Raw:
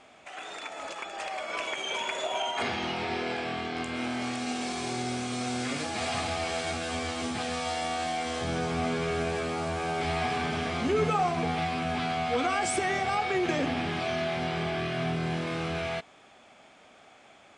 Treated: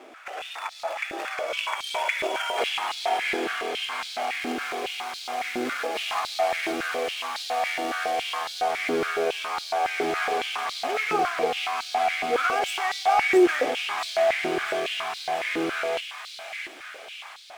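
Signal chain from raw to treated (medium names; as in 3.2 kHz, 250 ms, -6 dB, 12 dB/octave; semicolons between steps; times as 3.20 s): median filter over 9 samples; peaking EQ 5.3 kHz +4 dB 0.77 oct; in parallel at -1 dB: compression, threshold -45 dBFS, peak gain reduction 21.5 dB; on the sum: short-mantissa float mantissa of 4-bit; vibrato 7.1 Hz 7.8 cents; on a send: feedback echo behind a high-pass 670 ms, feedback 61%, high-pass 1.9 kHz, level -4 dB; on the sum: step-sequenced high-pass 7.2 Hz 340–4100 Hz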